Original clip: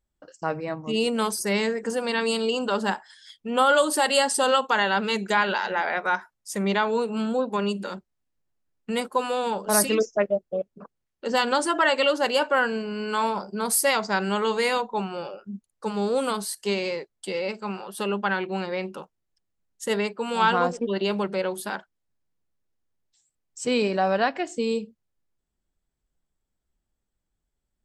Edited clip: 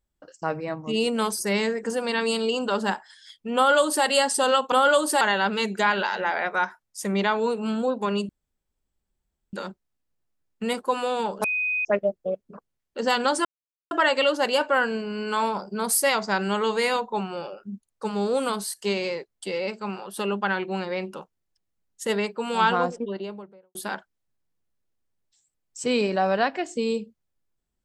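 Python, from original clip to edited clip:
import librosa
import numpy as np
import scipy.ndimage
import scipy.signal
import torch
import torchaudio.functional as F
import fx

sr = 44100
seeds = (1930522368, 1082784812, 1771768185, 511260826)

y = fx.studio_fade_out(x, sr, start_s=20.42, length_s=1.14)
y = fx.edit(y, sr, fx.duplicate(start_s=3.56, length_s=0.49, to_s=4.72),
    fx.insert_room_tone(at_s=7.8, length_s=1.24),
    fx.bleep(start_s=9.71, length_s=0.41, hz=2500.0, db=-22.5),
    fx.insert_silence(at_s=11.72, length_s=0.46), tone=tone)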